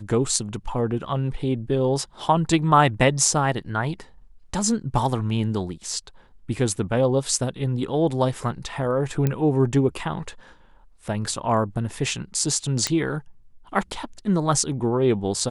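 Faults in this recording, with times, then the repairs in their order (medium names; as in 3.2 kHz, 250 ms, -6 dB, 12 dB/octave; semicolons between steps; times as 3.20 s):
9.27 s: pop -10 dBFS
12.87 s: pop -7 dBFS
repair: de-click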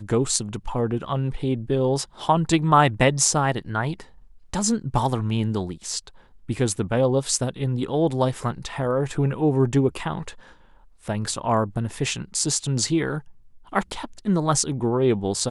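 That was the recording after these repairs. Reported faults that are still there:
nothing left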